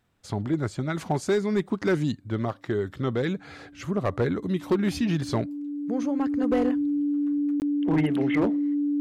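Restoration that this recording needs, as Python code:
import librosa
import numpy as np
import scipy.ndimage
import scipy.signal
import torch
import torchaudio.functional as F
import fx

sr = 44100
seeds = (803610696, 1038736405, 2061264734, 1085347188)

y = fx.fix_declip(x, sr, threshold_db=-17.0)
y = fx.notch(y, sr, hz=290.0, q=30.0)
y = fx.fix_interpolate(y, sr, at_s=(7.6,), length_ms=19.0)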